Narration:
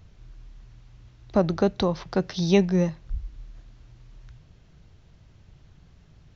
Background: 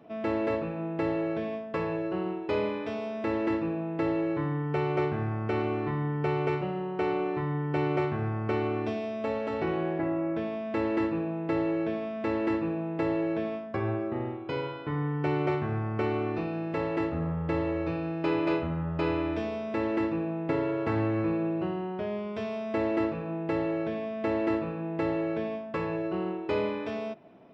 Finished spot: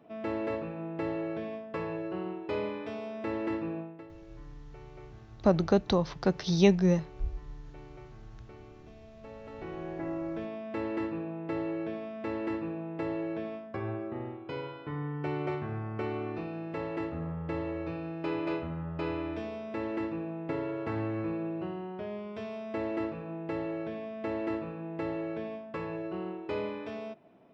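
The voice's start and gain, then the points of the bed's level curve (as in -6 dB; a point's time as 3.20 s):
4.10 s, -2.5 dB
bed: 3.79 s -4.5 dB
4.08 s -23 dB
8.84 s -23 dB
10.11 s -5.5 dB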